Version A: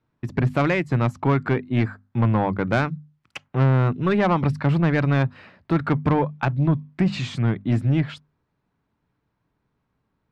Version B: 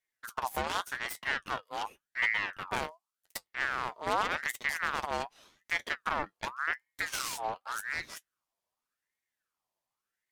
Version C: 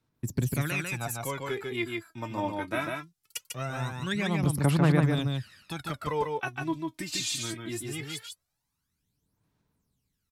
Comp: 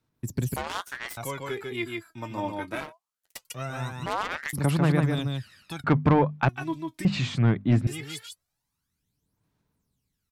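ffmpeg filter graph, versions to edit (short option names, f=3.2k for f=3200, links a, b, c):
-filter_complex "[1:a]asplit=3[a][b][c];[0:a]asplit=2[d][e];[2:a]asplit=6[f][g][h][i][j][k];[f]atrim=end=0.562[l];[a]atrim=start=0.558:end=1.172[m];[g]atrim=start=1.168:end=2.93[n];[b]atrim=start=2.69:end=3.53[o];[h]atrim=start=3.29:end=4.062[p];[c]atrim=start=4.058:end=4.532[q];[i]atrim=start=4.528:end=5.842[r];[d]atrim=start=5.838:end=6.492[s];[j]atrim=start=6.488:end=7.052[t];[e]atrim=start=7.048:end=7.872[u];[k]atrim=start=7.868[v];[l][m]acrossfade=d=0.004:c1=hsin:c2=hsin[w];[w][n]acrossfade=d=0.004:c1=hsin:c2=hsin[x];[x][o]acrossfade=d=0.24:c1=tri:c2=tri[y];[y][p]acrossfade=d=0.24:c1=tri:c2=tri[z];[z][q]acrossfade=d=0.004:c1=hsin:c2=hsin[aa];[aa][r]acrossfade=d=0.004:c1=hsin:c2=hsin[ab];[ab][s]acrossfade=d=0.004:c1=hsin:c2=hsin[ac];[ac][t]acrossfade=d=0.004:c1=hsin:c2=hsin[ad];[ad][u]acrossfade=d=0.004:c1=hsin:c2=hsin[ae];[ae][v]acrossfade=d=0.004:c1=hsin:c2=hsin"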